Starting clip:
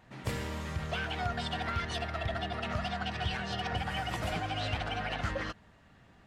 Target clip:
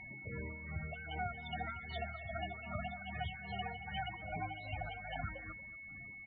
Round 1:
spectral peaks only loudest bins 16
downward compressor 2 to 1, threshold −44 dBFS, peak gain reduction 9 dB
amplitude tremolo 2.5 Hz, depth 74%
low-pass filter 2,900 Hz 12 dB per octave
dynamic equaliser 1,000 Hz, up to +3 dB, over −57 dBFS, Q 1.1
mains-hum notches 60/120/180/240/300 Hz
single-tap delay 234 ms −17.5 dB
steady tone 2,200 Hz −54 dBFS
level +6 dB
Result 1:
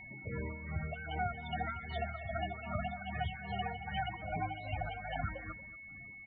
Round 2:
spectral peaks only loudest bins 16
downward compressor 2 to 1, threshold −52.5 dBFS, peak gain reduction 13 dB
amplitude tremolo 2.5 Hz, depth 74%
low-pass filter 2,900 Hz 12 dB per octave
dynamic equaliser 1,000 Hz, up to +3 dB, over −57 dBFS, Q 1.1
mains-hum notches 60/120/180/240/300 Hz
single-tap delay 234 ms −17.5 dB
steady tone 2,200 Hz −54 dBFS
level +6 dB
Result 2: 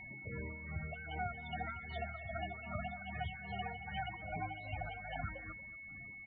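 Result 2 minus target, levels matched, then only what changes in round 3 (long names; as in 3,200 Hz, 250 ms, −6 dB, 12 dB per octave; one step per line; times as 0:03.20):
4,000 Hz band −3.0 dB
remove: low-pass filter 2,900 Hz 12 dB per octave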